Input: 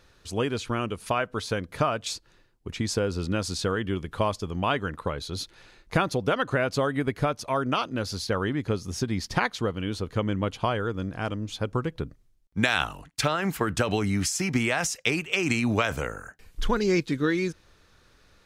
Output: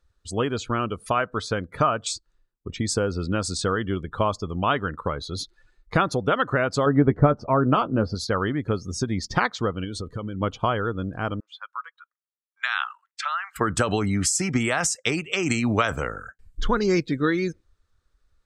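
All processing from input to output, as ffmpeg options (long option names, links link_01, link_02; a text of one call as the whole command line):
ffmpeg -i in.wav -filter_complex "[0:a]asettb=1/sr,asplit=3[link_01][link_02][link_03];[link_01]atrim=end=6.864[link_04];[link_02]atrim=start=6.86:end=8.15,asetpts=PTS-STARTPTS,afade=type=in:duration=0.004:curve=qsin,afade=type=out:start_time=1.286:duration=0.004:curve=qsin,adynamicsmooth=sensitivity=4:basefreq=4500,tiltshelf=frequency=1200:gain=7,asplit=2[link_05][link_06];[link_06]adelay=14,volume=-11.5dB[link_07];[link_05][link_07]amix=inputs=2:normalize=0,atrim=end_sample=56889[link_08];[link_03]atrim=start=8.146[link_09];[link_04][link_08]acrossfade=duration=0.004:curve1=hsin:curve2=qsin[link_10];[link_10][link_09]acrossfade=duration=0.004:curve1=qsin:curve2=hsin,asettb=1/sr,asplit=3[link_11][link_12][link_13];[link_11]atrim=end=9.844[link_14];[link_12]atrim=start=9.84:end=10.41,asetpts=PTS-STARTPTS,afade=type=in:duration=0.004:curve=qsin,afade=type=out:start_time=0.566:duration=0.004:curve=qsin,highshelf=frequency=4600:gain=4.5,acompressor=threshold=-28dB:ratio=12:attack=3.2:release=140:knee=1:detection=peak[link_15];[link_13]atrim=start=10.406[link_16];[link_14][link_15]acrossfade=duration=0.004:curve1=hsin:curve2=qsin[link_17];[link_17][link_16]acrossfade=duration=0.004:curve1=qsin:curve2=hsin,asettb=1/sr,asplit=3[link_18][link_19][link_20];[link_18]atrim=end=11.404[link_21];[link_19]atrim=start=11.4:end=13.56,asetpts=PTS-STARTPTS,afade=type=in:duration=0.004:curve=qsin,afade=type=out:start_time=2.156:duration=0.004:curve=qsin,highpass=frequency=1100:width=0.5412,highpass=frequency=1100:width=1.3066,aemphasis=mode=reproduction:type=75kf[link_22];[link_20]atrim=start=13.556[link_23];[link_21][link_22]acrossfade=duration=0.004:curve1=hsin:curve2=qsin[link_24];[link_24][link_23]acrossfade=duration=0.004:curve1=qsin:curve2=hsin,afftdn=noise_reduction=21:noise_floor=-43,equalizer=frequency=1250:width_type=o:width=0.33:gain=5,equalizer=frequency=2500:width_type=o:width=0.33:gain=-4,equalizer=frequency=8000:width_type=o:width=0.33:gain=8,volume=2dB" out.wav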